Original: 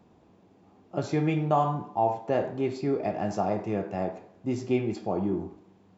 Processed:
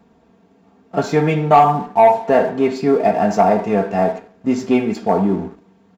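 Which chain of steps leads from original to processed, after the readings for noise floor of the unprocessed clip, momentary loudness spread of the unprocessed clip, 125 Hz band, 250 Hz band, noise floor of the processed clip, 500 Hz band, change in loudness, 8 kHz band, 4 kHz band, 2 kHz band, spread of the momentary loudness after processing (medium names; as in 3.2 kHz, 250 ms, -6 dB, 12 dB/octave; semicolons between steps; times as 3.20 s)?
-60 dBFS, 9 LU, +7.5 dB, +11.0 dB, -54 dBFS, +13.0 dB, +12.5 dB, no reading, +11.5 dB, +14.0 dB, 10 LU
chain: comb 4.4 ms, depth 69%; dynamic bell 830 Hz, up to +5 dB, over -35 dBFS, Q 1.3; waveshaping leveller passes 1; peaking EQ 1.6 kHz +4 dB 0.64 oct; trim +5.5 dB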